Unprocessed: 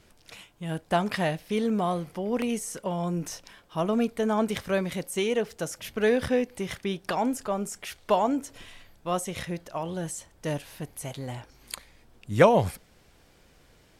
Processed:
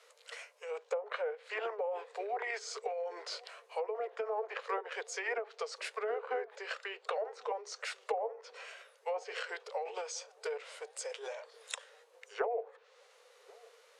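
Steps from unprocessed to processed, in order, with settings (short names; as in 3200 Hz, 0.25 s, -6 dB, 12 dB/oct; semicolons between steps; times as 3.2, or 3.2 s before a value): treble ducked by the level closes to 1100 Hz, closed at -20.5 dBFS; steep high-pass 450 Hz 96 dB/oct; compressor 3:1, threshold -34 dBFS, peak gain reduction 15 dB; formant shift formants -4 st; dark delay 1.086 s, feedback 53%, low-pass 950 Hz, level -23.5 dB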